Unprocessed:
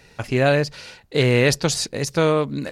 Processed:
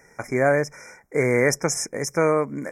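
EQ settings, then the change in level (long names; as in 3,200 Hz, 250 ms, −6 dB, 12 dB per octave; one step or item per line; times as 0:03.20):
linear-phase brick-wall band-stop 2,400–5,100 Hz
parametric band 97 Hz −6.5 dB 0.46 octaves
low-shelf EQ 160 Hz −11 dB
0.0 dB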